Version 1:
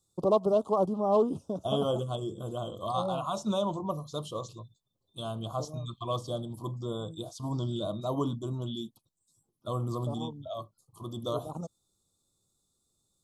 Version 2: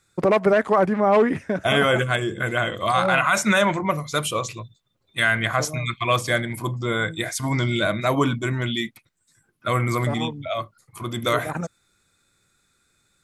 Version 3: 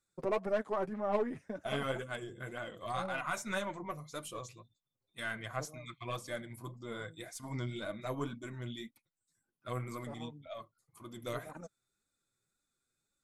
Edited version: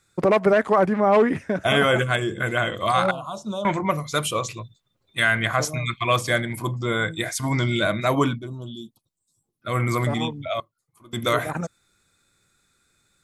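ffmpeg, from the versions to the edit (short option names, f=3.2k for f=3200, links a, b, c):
-filter_complex "[0:a]asplit=2[a][b];[1:a]asplit=4[c][d][e][f];[c]atrim=end=3.112[g];[a]atrim=start=3.108:end=3.652[h];[d]atrim=start=3.648:end=8.48[i];[b]atrim=start=8.24:end=9.81[j];[e]atrim=start=9.57:end=10.602[k];[2:a]atrim=start=10.598:end=11.132[l];[f]atrim=start=11.128[m];[g][h]acrossfade=d=0.004:c1=hsin:c2=hsin[n];[n][i]acrossfade=d=0.004:c1=hsin:c2=hsin[o];[o][j]acrossfade=d=0.24:c1=tri:c2=tri[p];[p][k]acrossfade=d=0.24:c1=tri:c2=tri[q];[q][l]acrossfade=d=0.004:c1=hsin:c2=hsin[r];[r][m]acrossfade=d=0.004:c1=hsin:c2=hsin"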